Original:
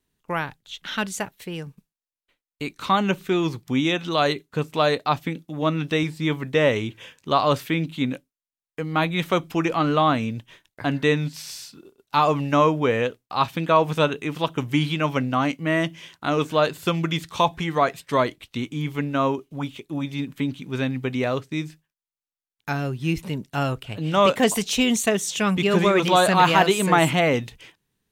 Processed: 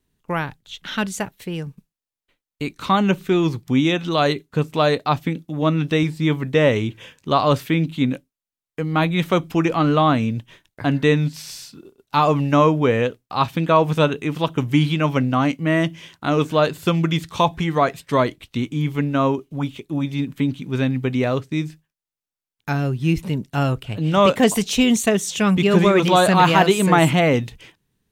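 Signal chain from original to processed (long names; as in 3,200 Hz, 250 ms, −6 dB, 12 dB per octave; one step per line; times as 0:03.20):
low-shelf EQ 340 Hz +6 dB
level +1 dB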